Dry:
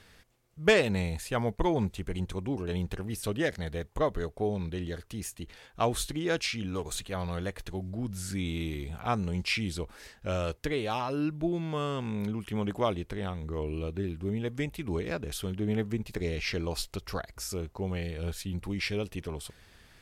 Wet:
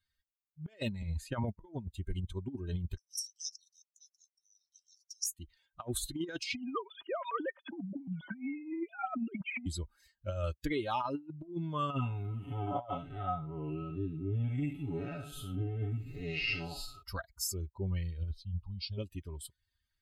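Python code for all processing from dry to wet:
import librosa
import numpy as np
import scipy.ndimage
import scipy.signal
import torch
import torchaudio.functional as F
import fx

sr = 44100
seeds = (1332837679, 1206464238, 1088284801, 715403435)

y = fx.chain(x, sr, fx.high_shelf(hz=8800.0, db=-9.5),
    fx.band_squash(depth_pct=40), at=(1.02, 1.44))
y = fx.chain(y, sr, fx.ladder_bandpass(hz=5700.0, resonance_pct=90),
    fx.tilt_eq(slope=4.5), at=(2.97, 5.26))
y = fx.chain(y, sr, fx.sine_speech(),
    fx.band_squash(depth_pct=100), at=(6.55, 9.66))
y = fx.chain(y, sr, fx.spec_blur(span_ms=191.0),
    fx.comb(ms=7.1, depth=0.83),
    fx.small_body(hz=(750.0, 1300.0, 2700.0), ring_ms=45, db=16), at=(11.9, 17.03))
y = fx.chain(y, sr, fx.savgol(points=15),
    fx.fixed_phaser(hz=800.0, stages=4), at=(18.31, 18.98))
y = fx.bin_expand(y, sr, power=2.0)
y = y + 0.5 * np.pad(y, (int(3.2 * sr / 1000.0), 0))[:len(y)]
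y = fx.over_compress(y, sr, threshold_db=-38.0, ratio=-0.5)
y = y * librosa.db_to_amplitude(3.0)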